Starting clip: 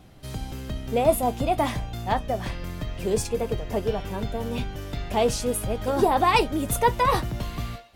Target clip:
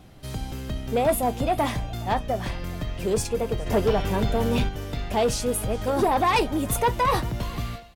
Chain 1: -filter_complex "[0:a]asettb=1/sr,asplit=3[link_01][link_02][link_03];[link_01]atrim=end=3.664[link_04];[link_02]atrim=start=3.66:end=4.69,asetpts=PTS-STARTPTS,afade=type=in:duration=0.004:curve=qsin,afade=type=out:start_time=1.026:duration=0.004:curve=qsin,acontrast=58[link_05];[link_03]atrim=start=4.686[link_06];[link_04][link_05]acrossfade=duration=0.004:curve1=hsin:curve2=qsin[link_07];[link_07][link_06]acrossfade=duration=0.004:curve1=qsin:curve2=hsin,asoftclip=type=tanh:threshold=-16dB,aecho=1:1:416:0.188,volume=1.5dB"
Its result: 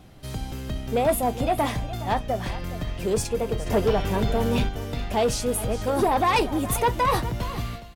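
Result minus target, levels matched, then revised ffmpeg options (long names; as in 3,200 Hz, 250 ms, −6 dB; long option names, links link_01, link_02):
echo-to-direct +8 dB
-filter_complex "[0:a]asettb=1/sr,asplit=3[link_01][link_02][link_03];[link_01]atrim=end=3.664[link_04];[link_02]atrim=start=3.66:end=4.69,asetpts=PTS-STARTPTS,afade=type=in:duration=0.004:curve=qsin,afade=type=out:start_time=1.026:duration=0.004:curve=qsin,acontrast=58[link_05];[link_03]atrim=start=4.686[link_06];[link_04][link_05]acrossfade=duration=0.004:curve1=hsin:curve2=qsin[link_07];[link_07][link_06]acrossfade=duration=0.004:curve1=qsin:curve2=hsin,asoftclip=type=tanh:threshold=-16dB,aecho=1:1:416:0.075,volume=1.5dB"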